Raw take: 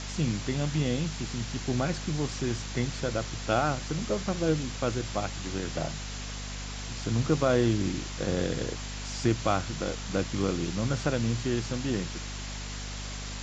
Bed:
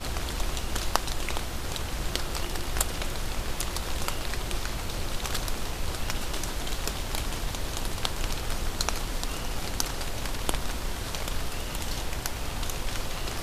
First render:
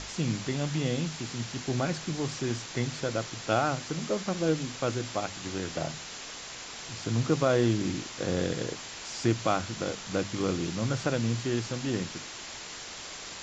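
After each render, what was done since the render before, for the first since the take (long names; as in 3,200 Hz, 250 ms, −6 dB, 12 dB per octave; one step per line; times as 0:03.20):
mains-hum notches 50/100/150/200/250 Hz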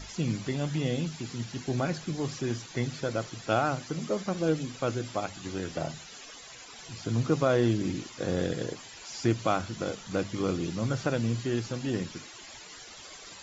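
broadband denoise 13 dB, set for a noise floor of −42 dBFS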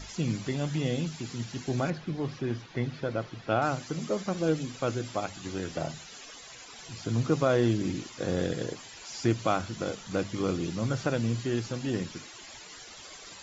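0:01.90–0:03.62: high-frequency loss of the air 200 metres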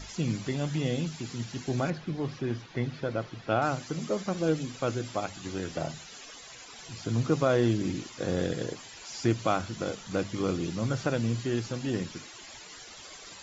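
no processing that can be heard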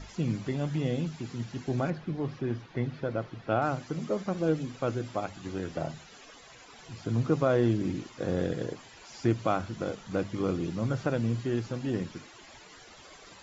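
high-shelf EQ 3,000 Hz −10.5 dB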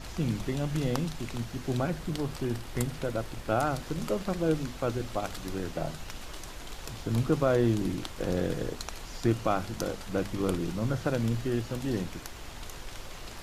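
mix in bed −11 dB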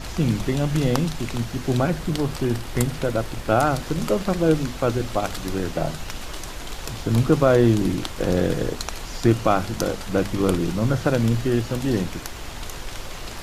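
level +8.5 dB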